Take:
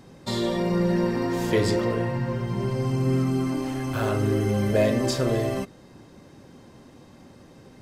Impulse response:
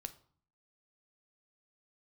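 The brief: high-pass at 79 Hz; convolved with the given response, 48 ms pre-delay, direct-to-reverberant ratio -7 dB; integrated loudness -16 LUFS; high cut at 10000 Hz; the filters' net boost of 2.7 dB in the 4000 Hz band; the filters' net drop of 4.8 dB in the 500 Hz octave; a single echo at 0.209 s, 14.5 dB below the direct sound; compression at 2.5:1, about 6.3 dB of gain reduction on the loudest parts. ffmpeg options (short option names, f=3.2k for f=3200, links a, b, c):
-filter_complex "[0:a]highpass=79,lowpass=10k,equalizer=f=500:t=o:g=-6.5,equalizer=f=4k:t=o:g=3.5,acompressor=threshold=-30dB:ratio=2.5,aecho=1:1:209:0.188,asplit=2[a][b];[1:a]atrim=start_sample=2205,adelay=48[c];[b][c]afir=irnorm=-1:irlink=0,volume=10.5dB[d];[a][d]amix=inputs=2:normalize=0,volume=8.5dB"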